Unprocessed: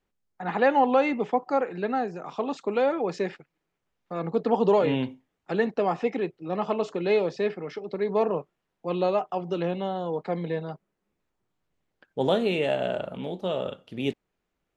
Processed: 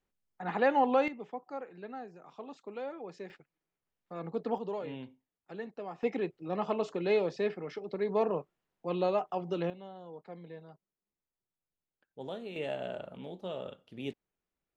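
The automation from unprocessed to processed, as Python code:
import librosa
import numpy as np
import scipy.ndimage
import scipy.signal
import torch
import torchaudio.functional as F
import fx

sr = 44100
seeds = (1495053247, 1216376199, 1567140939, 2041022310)

y = fx.gain(x, sr, db=fx.steps((0.0, -5.5), (1.08, -16.0), (3.3, -9.5), (4.58, -16.5), (6.03, -5.0), (9.7, -17.5), (12.56, -10.5)))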